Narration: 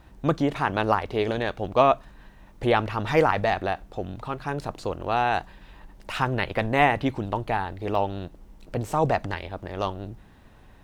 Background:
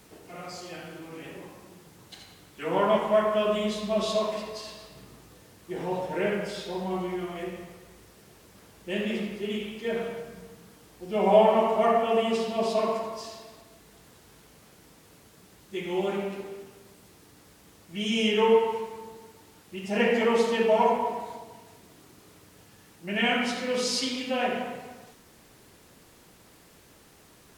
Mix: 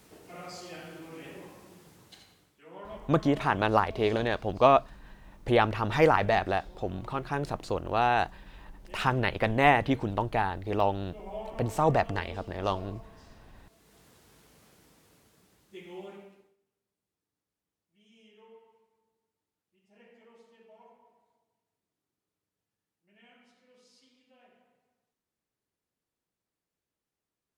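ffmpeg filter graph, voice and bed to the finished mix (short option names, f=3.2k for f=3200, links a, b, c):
-filter_complex "[0:a]adelay=2850,volume=-1.5dB[a];[1:a]volume=13dB,afade=t=out:st=1.89:d=0.72:silence=0.125893,afade=t=in:st=13.51:d=0.48:silence=0.158489,afade=t=out:st=14.63:d=1.93:silence=0.0316228[b];[a][b]amix=inputs=2:normalize=0"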